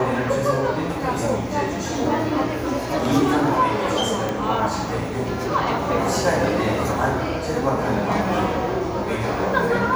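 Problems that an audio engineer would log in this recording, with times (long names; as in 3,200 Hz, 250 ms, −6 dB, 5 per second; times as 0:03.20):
0:04.29: click −11 dBFS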